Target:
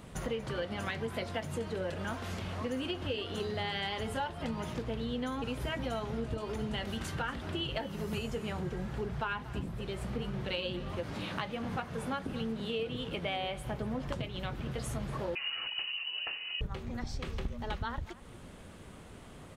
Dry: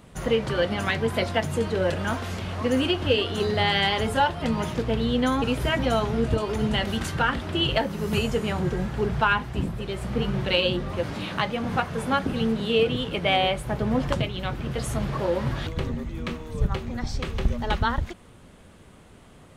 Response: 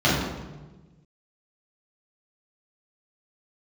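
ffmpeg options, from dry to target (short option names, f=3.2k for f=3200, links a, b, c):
-filter_complex "[0:a]acompressor=threshold=-37dB:ratio=3,aecho=1:1:236:0.126,asettb=1/sr,asplit=3[a][b][c];[a]atrim=end=15.354[d];[b]atrim=start=15.35:end=16.61,asetpts=PTS-STARTPTS,afade=t=in:d=0.004:c=qsin,afade=t=out:st=1.256:d=0.004:c=qsin,lowpass=f=2.6k:t=q:w=0.5098,lowpass=f=2.6k:t=q:w=0.6013,lowpass=f=2.6k:t=q:w=0.9,lowpass=f=2.6k:t=q:w=2.563,afreqshift=-3000[e];[c]atrim=start=16.606[f];[d][e]acrossfade=d=0.004:c1=hsin:c2=qsin[g];[g][f]acrossfade=d=0.004:c1=qsin:c2=hsin"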